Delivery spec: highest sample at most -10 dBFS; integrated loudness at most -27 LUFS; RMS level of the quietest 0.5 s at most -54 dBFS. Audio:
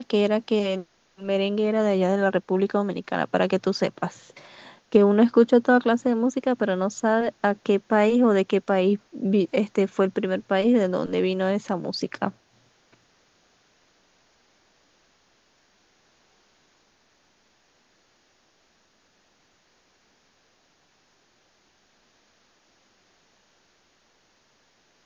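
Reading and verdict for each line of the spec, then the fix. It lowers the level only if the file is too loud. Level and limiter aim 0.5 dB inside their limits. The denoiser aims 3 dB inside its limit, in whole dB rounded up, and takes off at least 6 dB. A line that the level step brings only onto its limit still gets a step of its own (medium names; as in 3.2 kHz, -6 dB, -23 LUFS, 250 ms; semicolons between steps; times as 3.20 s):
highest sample -4.5 dBFS: fail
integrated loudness -23.0 LUFS: fail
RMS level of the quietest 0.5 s -64 dBFS: pass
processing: trim -4.5 dB; peak limiter -10.5 dBFS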